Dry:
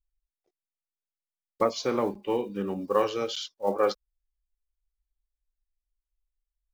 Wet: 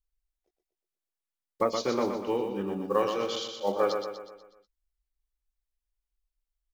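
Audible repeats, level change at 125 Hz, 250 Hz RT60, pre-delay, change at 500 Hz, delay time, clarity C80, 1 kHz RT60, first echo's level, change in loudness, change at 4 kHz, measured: 5, -1.5 dB, none, none, -1.0 dB, 0.122 s, none, none, -6.0 dB, -1.0 dB, -1.0 dB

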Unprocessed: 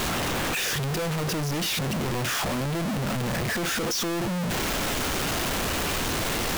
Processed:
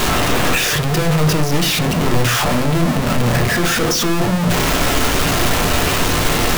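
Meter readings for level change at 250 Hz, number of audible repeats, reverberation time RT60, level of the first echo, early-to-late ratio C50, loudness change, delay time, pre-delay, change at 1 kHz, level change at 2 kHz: +11.0 dB, none, 0.50 s, none, 13.5 dB, +10.5 dB, none, 7 ms, +11.0 dB, +10.0 dB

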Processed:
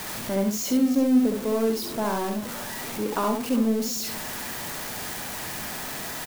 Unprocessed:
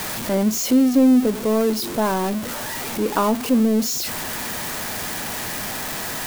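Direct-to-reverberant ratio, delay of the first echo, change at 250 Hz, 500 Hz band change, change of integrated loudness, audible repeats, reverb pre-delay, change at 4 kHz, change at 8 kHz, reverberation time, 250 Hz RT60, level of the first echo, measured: none, 67 ms, -5.5 dB, -5.0 dB, -5.5 dB, 2, none, -5.5 dB, -5.5 dB, none, none, -4.0 dB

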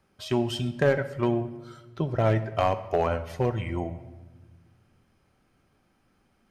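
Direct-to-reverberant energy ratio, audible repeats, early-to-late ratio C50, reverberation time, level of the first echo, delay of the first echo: 11.0 dB, none, 13.5 dB, 1.3 s, none, none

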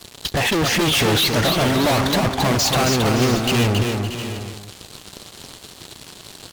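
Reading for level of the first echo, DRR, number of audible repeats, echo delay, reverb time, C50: -4.5 dB, none, 5, 0.272 s, none, none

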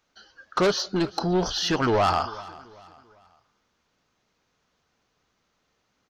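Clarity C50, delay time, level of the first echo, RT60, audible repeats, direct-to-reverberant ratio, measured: none, 0.39 s, -20.5 dB, none, 2, none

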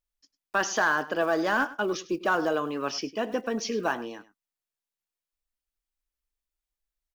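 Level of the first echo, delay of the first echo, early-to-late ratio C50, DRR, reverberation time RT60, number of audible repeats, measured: -17.5 dB, 0.1 s, none, none, none, 1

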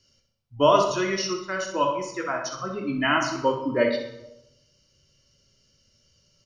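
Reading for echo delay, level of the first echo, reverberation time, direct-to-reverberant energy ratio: 63 ms, -9.0 dB, 0.90 s, 2.0 dB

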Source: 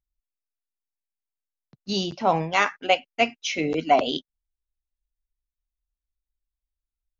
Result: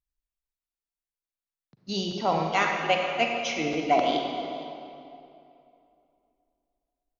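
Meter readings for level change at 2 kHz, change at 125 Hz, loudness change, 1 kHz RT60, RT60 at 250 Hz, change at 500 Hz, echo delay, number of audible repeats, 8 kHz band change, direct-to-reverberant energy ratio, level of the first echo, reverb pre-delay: -2.0 dB, -2.5 dB, -2.5 dB, 2.7 s, 2.8 s, -2.0 dB, 0.461 s, 1, n/a, 1.5 dB, -18.0 dB, 37 ms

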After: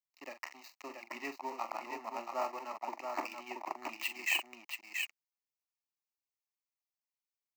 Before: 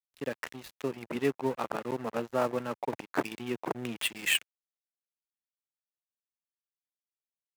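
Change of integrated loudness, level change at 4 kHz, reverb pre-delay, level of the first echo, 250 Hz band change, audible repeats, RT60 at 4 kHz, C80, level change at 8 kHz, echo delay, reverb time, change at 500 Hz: -6.0 dB, -6.5 dB, none, -10.5 dB, -15.0 dB, 2, none, none, -7.0 dB, 43 ms, none, -11.5 dB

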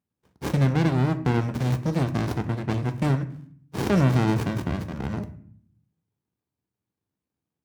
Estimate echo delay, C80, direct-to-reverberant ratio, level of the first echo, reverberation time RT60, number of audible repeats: none, 17.5 dB, 9.0 dB, none, 0.55 s, none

